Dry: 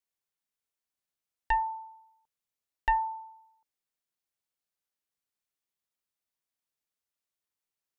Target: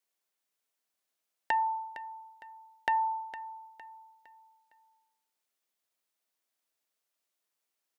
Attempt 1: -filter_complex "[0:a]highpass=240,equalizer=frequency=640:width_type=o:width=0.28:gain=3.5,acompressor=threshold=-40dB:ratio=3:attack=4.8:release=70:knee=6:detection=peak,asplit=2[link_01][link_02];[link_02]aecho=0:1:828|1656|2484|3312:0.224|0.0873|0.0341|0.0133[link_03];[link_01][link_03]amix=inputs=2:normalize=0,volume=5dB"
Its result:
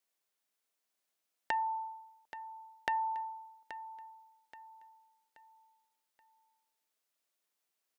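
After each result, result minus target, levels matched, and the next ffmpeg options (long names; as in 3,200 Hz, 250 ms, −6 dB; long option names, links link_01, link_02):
echo 369 ms late; downward compressor: peak gain reduction +5 dB
-filter_complex "[0:a]highpass=240,equalizer=frequency=640:width_type=o:width=0.28:gain=3.5,acompressor=threshold=-40dB:ratio=3:attack=4.8:release=70:knee=6:detection=peak,asplit=2[link_01][link_02];[link_02]aecho=0:1:459|918|1377|1836:0.224|0.0873|0.0341|0.0133[link_03];[link_01][link_03]amix=inputs=2:normalize=0,volume=5dB"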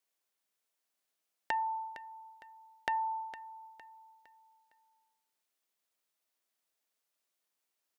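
downward compressor: peak gain reduction +5 dB
-filter_complex "[0:a]highpass=240,equalizer=frequency=640:width_type=o:width=0.28:gain=3.5,acompressor=threshold=-32.5dB:ratio=3:attack=4.8:release=70:knee=6:detection=peak,asplit=2[link_01][link_02];[link_02]aecho=0:1:459|918|1377|1836:0.224|0.0873|0.0341|0.0133[link_03];[link_01][link_03]amix=inputs=2:normalize=0,volume=5dB"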